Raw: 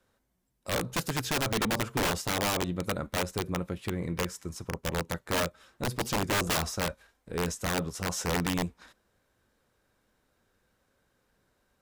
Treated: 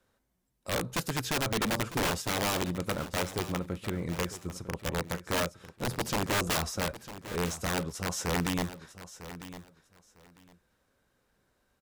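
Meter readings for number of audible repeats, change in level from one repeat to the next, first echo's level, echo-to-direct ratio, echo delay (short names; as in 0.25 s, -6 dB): 2, -14.5 dB, -14.0 dB, -14.0 dB, 0.951 s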